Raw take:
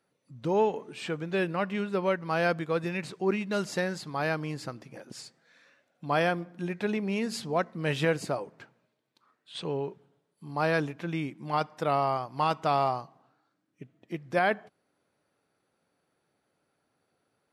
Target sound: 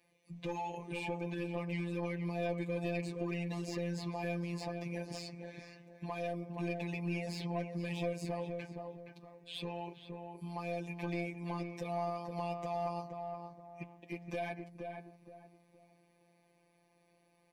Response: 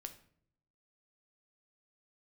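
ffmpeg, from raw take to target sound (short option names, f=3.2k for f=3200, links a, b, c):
-filter_complex "[0:a]equalizer=f=2.4k:w=5.2:g=12,acrossover=split=410|900|4900[a][b][c][d];[a]acompressor=threshold=-45dB:ratio=4[e];[b]acompressor=threshold=-39dB:ratio=4[f];[c]acompressor=threshold=-45dB:ratio=4[g];[d]acompressor=threshold=-56dB:ratio=4[h];[e][f][g][h]amix=inputs=4:normalize=0,alimiter=level_in=6dB:limit=-24dB:level=0:latency=1:release=75,volume=-6dB,afftfilt=real='hypot(re,im)*cos(PI*b)':imag='0':win_size=1024:overlap=0.75,asoftclip=type=tanh:threshold=-34.5dB,asuperstop=centerf=1400:order=4:qfactor=4.1,asplit=2[i][j];[j]adelay=13,volume=-12dB[k];[i][k]amix=inputs=2:normalize=0,asplit=2[l][m];[m]adelay=470,lowpass=f=1.4k:p=1,volume=-4.5dB,asplit=2[n][o];[o]adelay=470,lowpass=f=1.4k:p=1,volume=0.3,asplit=2[p][q];[q]adelay=470,lowpass=f=1.4k:p=1,volume=0.3,asplit=2[r][s];[s]adelay=470,lowpass=f=1.4k:p=1,volume=0.3[t];[n][p][r][t]amix=inputs=4:normalize=0[u];[l][u]amix=inputs=2:normalize=0,volume=5dB"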